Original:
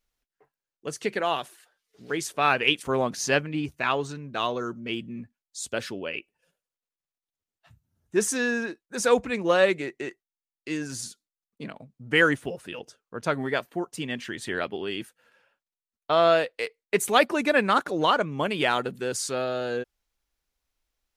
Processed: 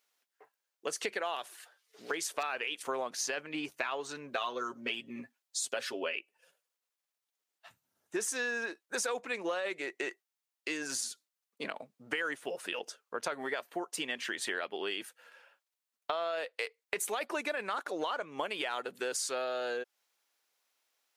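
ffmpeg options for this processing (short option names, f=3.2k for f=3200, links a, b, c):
-filter_complex "[0:a]asettb=1/sr,asplit=3[a][b][c];[a]atrim=end=1.364[d];[b]atrim=start=1.36:end=2.43,asetpts=PTS-STARTPTS,afade=t=in:d=0.004:c=qsin,afade=t=out:st=1.066:d=0.004:c=qsin,aeval=exprs='0.141*(abs(mod(val(0)/0.141+3,4)-2)-1)':c=same[e];[c]atrim=start=2.426[f];[d][e]acrossfade=d=0.004:c1=hsin:c2=qsin[g];[g][f]acrossfade=d=0.004:c1=qsin:c2=hsin,asettb=1/sr,asplit=3[h][i][j];[h]atrim=end=4.314[k];[i]atrim=start=4.31:end=6.14,asetpts=PTS-STARTPTS,afade=t=in:d=0.004:c=qsin,afade=t=out:st=1.826:d=0.004:c=qsin,aecho=1:1:7.5:0.65,atrim=end_sample=80703[l];[j]atrim=start=6.136[m];[k][l]acrossfade=d=0.004:c1=hsin:c2=qsin[n];[n][m]acrossfade=d=0.004:c1=qsin:c2=hsin,highpass=500,alimiter=limit=-17dB:level=0:latency=1:release=17,acompressor=threshold=-38dB:ratio=6,volume=5.5dB"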